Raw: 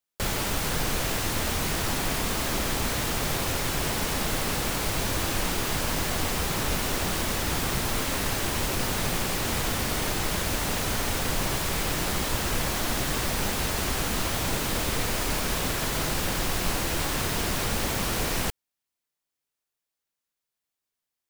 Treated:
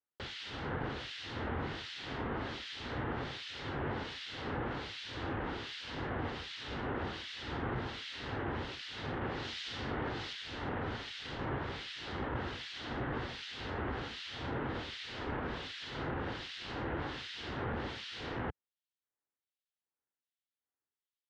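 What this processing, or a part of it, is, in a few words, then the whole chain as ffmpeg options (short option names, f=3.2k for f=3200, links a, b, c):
guitar amplifier with harmonic tremolo: -filter_complex "[0:a]acrossover=split=2100[a][b];[a]aeval=exprs='val(0)*(1-1/2+1/2*cos(2*PI*1.3*n/s))':c=same[c];[b]aeval=exprs='val(0)*(1-1/2-1/2*cos(2*PI*1.3*n/s))':c=same[d];[c][d]amix=inputs=2:normalize=0,asoftclip=type=tanh:threshold=-21.5dB,highpass=80,equalizer=f=180:t=q:w=4:g=-9,equalizer=f=630:t=q:w=4:g=-6,equalizer=f=1.1k:t=q:w=4:g=-4,equalizer=f=2.4k:t=q:w=4:g=-7,lowpass=f=3.6k:w=0.5412,lowpass=f=3.6k:w=1.3066,asettb=1/sr,asplit=3[e][f][g];[e]atrim=end=9.214[h];[f]atrim=start=9.21:end=10.33,asetpts=PTS-STARTPTS,afade=t=in:d=0.004:c=qsin,afade=t=out:st=1.116:d=0.004:c=qsin,equalizer=f=5.7k:t=o:w=1.6:g=4.5[i];[g]atrim=start=10.326[j];[h][i]acrossfade=d=0.004:c1=hsin:c2=qsin[k];[k][j]acrossfade=d=0.004:c1=qsin:c2=hsin,volume=-2dB"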